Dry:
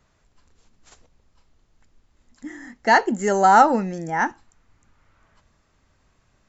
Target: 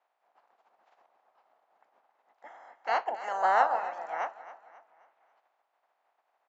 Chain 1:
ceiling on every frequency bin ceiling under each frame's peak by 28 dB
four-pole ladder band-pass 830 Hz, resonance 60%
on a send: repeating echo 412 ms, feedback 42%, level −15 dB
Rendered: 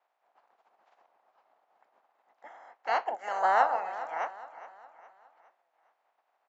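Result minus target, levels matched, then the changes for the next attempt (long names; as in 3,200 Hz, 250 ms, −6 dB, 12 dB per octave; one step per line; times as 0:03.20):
echo 144 ms late
change: repeating echo 268 ms, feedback 42%, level −15 dB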